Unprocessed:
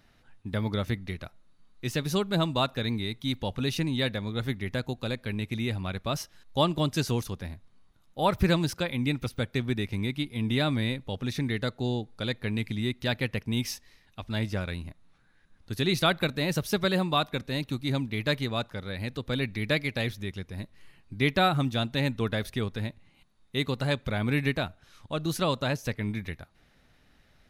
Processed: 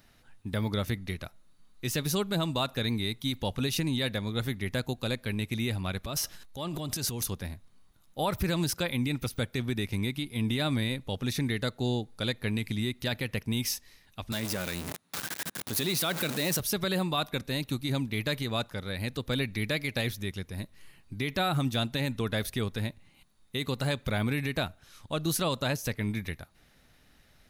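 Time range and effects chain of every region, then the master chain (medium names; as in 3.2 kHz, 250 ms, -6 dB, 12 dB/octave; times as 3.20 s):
6.03–7.26 s: compression, threshold -30 dBFS + transient shaper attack -7 dB, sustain +9 dB
14.32–16.60 s: jump at every zero crossing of -30 dBFS + high-pass 160 Hz
whole clip: treble shelf 6.9 kHz +11.5 dB; peak limiter -19 dBFS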